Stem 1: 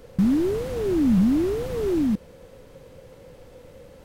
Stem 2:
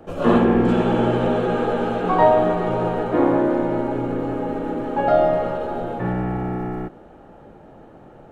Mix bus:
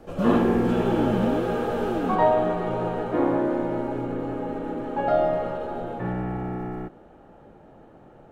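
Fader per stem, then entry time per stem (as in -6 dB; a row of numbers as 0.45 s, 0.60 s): -7.5 dB, -5.0 dB; 0.00 s, 0.00 s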